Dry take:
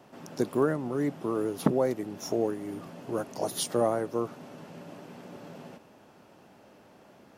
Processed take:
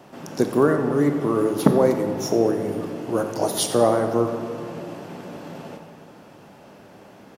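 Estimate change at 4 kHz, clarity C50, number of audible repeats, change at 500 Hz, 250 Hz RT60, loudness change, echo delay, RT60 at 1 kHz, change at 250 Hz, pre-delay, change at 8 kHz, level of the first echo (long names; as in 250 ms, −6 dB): +8.0 dB, 6.5 dB, 1, +9.0 dB, 3.1 s, +8.5 dB, 89 ms, 2.4 s, +9.0 dB, 20 ms, +8.0 dB, −14.5 dB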